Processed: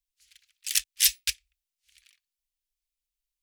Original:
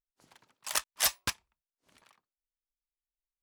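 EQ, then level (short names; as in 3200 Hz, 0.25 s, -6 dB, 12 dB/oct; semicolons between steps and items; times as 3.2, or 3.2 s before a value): inverse Chebyshev band-stop 160–800 Hz, stop band 60 dB; +6.5 dB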